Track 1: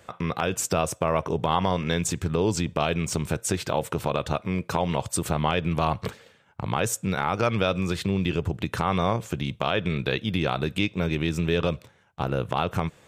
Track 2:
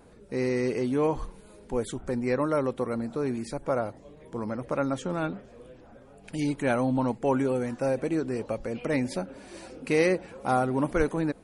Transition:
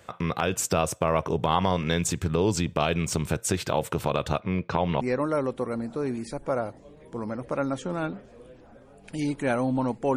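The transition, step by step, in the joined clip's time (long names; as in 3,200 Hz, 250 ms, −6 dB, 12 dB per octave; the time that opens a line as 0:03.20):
track 1
0:04.40–0:05.01: Bessel low-pass filter 3,500 Hz, order 4
0:05.01: continue with track 2 from 0:02.21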